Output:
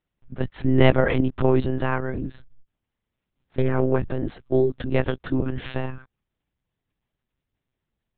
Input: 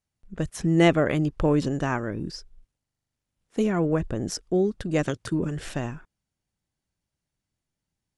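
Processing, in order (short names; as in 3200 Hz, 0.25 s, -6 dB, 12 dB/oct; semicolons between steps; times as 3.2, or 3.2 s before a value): monotone LPC vocoder at 8 kHz 130 Hz; 2.14–3.82 Doppler distortion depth 0.31 ms; gain +3 dB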